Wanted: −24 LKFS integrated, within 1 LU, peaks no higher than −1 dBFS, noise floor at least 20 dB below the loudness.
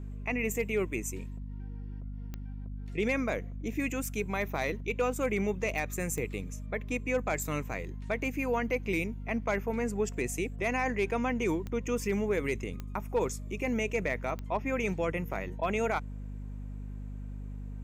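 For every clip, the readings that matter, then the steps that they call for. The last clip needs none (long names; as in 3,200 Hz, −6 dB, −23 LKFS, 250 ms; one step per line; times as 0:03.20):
number of clicks 6; mains hum 50 Hz; hum harmonics up to 250 Hz; level of the hum −37 dBFS; integrated loudness −33.0 LKFS; sample peak −19.0 dBFS; target loudness −24.0 LKFS
→ click removal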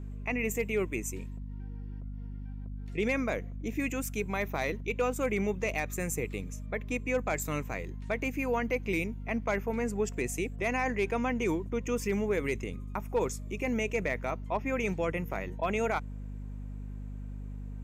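number of clicks 0; mains hum 50 Hz; hum harmonics up to 250 Hz; level of the hum −37 dBFS
→ hum removal 50 Hz, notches 5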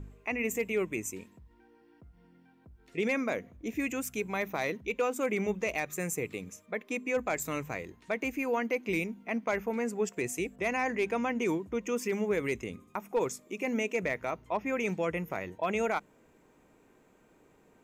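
mains hum none found; integrated loudness −33.0 LKFS; sample peak −19.5 dBFS; target loudness −24.0 LKFS
→ level +9 dB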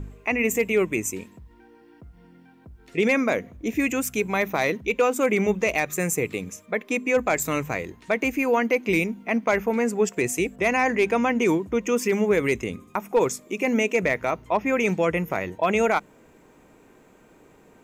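integrated loudness −24.0 LKFS; sample peak −10.5 dBFS; background noise floor −54 dBFS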